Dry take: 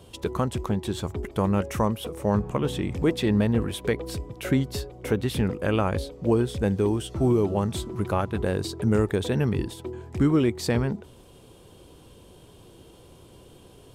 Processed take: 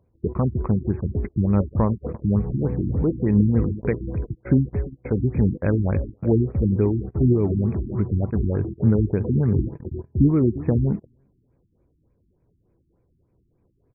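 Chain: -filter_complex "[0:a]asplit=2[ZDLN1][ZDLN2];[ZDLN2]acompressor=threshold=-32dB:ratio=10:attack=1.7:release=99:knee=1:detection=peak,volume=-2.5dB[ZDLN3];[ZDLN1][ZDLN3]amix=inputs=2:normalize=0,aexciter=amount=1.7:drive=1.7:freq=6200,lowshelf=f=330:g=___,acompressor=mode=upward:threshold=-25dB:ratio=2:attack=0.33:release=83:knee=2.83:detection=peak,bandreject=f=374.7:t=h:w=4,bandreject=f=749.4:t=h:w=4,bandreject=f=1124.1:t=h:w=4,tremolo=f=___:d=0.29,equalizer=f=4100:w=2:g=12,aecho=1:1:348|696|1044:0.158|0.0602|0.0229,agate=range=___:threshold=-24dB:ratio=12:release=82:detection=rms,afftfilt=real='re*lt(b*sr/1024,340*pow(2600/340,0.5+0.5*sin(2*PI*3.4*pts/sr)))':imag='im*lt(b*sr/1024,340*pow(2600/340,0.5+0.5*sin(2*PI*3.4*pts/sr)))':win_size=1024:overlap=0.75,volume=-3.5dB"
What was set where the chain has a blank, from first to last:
11, 4.4, -26dB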